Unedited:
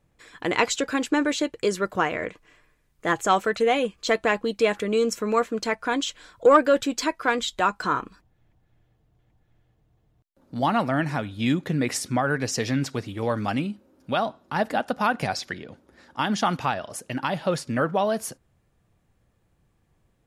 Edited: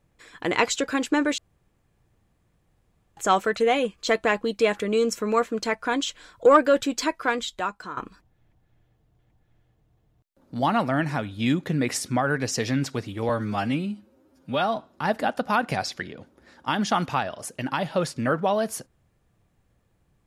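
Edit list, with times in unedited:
0:01.38–0:03.17: fill with room tone
0:07.15–0:07.97: fade out, to −14.5 dB
0:13.29–0:14.27: time-stretch 1.5×

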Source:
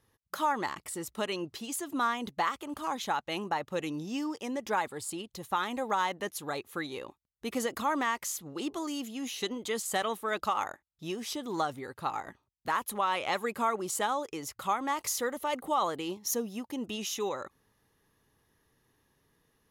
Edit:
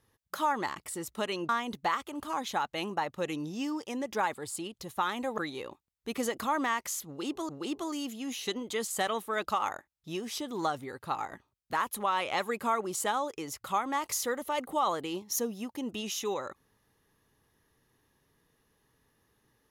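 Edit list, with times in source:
0:01.49–0:02.03: remove
0:05.92–0:06.75: remove
0:08.44–0:08.86: repeat, 2 plays

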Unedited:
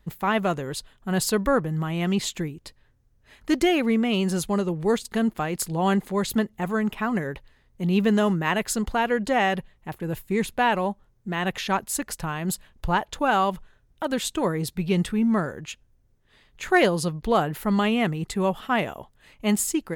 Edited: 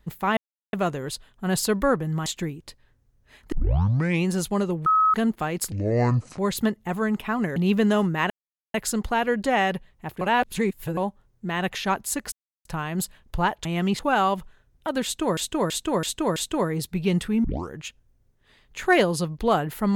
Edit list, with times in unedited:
0:00.37: splice in silence 0.36 s
0:01.90–0:02.24: move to 0:13.15
0:03.50: tape start 0.76 s
0:04.84–0:05.12: beep over 1,280 Hz −15.5 dBFS
0:05.70–0:06.11: play speed 62%
0:07.29–0:07.83: remove
0:08.57: splice in silence 0.44 s
0:10.04–0:10.80: reverse
0:12.15: splice in silence 0.33 s
0:14.20–0:14.53: repeat, 5 plays
0:15.28: tape start 0.27 s

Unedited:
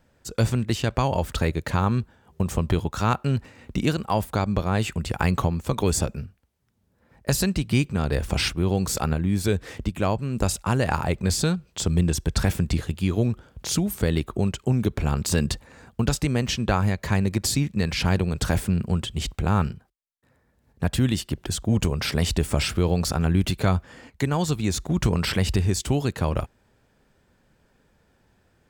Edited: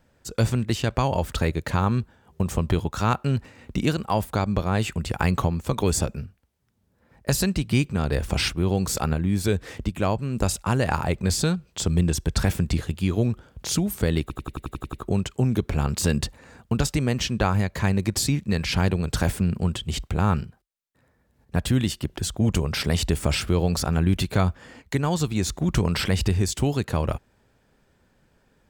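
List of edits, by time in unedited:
0:14.21: stutter 0.09 s, 9 plays

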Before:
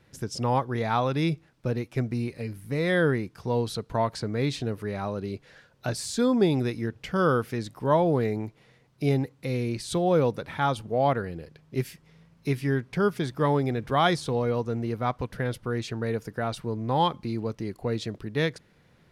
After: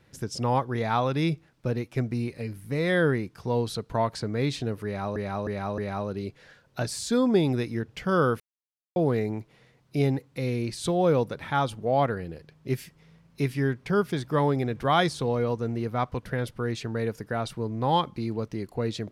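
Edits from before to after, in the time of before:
0:04.85–0:05.16: repeat, 4 plays
0:07.47–0:08.03: silence

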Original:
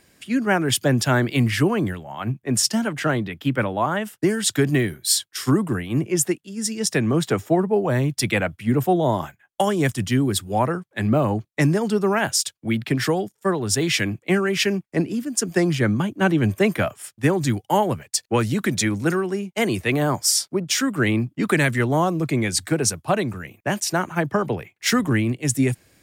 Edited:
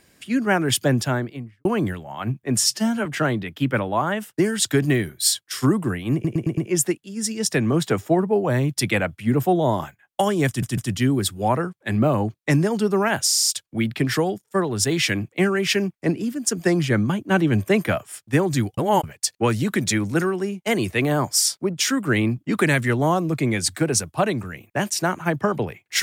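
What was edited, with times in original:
0:00.81–0:01.65: fade out and dull
0:02.59–0:02.90: time-stretch 1.5×
0:05.98: stutter 0.11 s, 5 plays
0:09.88: stutter 0.15 s, 3 plays
0:12.37: stutter 0.04 s, 6 plays
0:17.68–0:17.94: reverse

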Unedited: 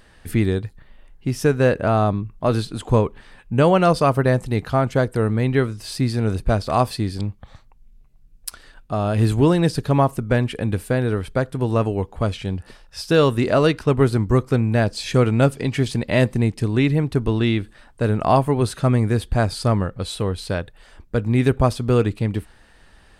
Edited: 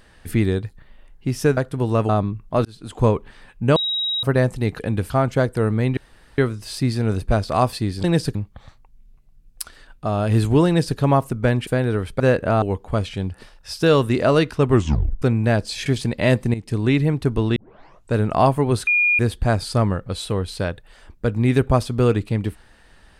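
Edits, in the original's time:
0:01.57–0:01.99: swap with 0:11.38–0:11.90
0:02.55–0:02.96: fade in
0:03.66–0:04.13: beep over 3,820 Hz −20 dBFS
0:05.56: splice in room tone 0.41 s
0:09.54–0:09.85: duplicate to 0:07.22
0:10.54–0:10.85: move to 0:04.69
0:13.99: tape stop 0.51 s
0:15.14–0:15.76: remove
0:16.44–0:16.69: fade in, from −13 dB
0:17.46: tape start 0.57 s
0:18.77–0:19.09: beep over 2,430 Hz −14 dBFS

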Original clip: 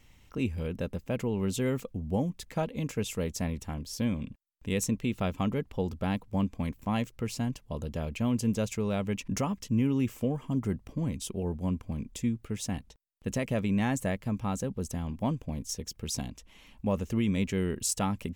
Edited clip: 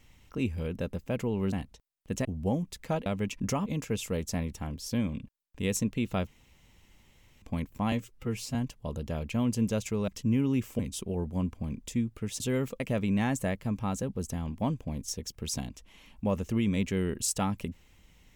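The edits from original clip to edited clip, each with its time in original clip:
0:01.52–0:01.92: swap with 0:12.68–0:13.41
0:05.34–0:06.49: fill with room tone
0:06.99–0:07.41: time-stretch 1.5×
0:08.94–0:09.54: move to 0:02.73
0:10.25–0:11.07: remove

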